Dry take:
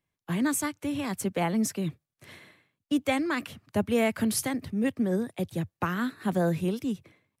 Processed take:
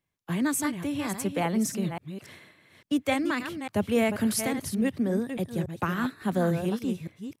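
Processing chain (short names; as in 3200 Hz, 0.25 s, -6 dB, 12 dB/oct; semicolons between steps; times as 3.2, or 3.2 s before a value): reverse delay 0.283 s, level -8 dB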